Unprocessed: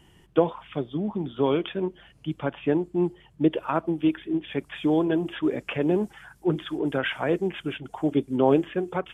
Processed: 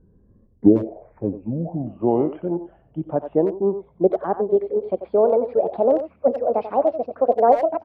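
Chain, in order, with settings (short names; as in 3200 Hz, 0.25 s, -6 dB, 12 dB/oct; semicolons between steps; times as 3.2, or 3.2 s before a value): speed glide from 52% -> 181%; low-pass sweep 330 Hz -> 670 Hz, 0.09–1.94; speakerphone echo 90 ms, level -10 dB; gain +1 dB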